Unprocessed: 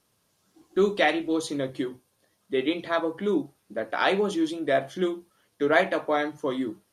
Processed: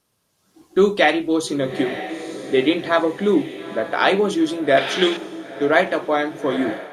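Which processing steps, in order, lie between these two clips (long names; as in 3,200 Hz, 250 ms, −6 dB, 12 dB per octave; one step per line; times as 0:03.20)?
feedback delay with all-pass diffusion 902 ms, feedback 52%, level −13 dB
automatic gain control gain up to 9 dB
0:04.77–0:05.17: meter weighting curve D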